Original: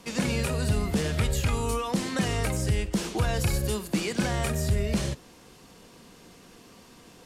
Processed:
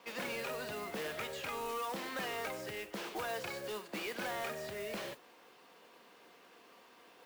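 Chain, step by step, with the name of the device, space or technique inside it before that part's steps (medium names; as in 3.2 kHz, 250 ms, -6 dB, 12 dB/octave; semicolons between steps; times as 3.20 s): carbon microphone (band-pass 500–3100 Hz; saturation -29 dBFS, distortion -15 dB; modulation noise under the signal 13 dB); trim -3.5 dB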